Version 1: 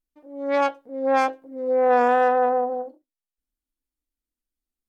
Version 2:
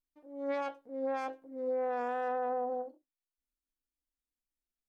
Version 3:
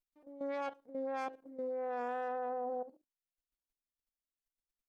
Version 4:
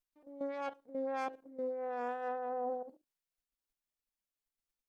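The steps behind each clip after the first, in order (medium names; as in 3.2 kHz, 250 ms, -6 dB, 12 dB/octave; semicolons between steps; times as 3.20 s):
peak limiter -18.5 dBFS, peak gain reduction 10 dB; trim -8 dB
level held to a coarse grid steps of 13 dB; trim +1.5 dB
random flutter of the level, depth 55%; trim +3 dB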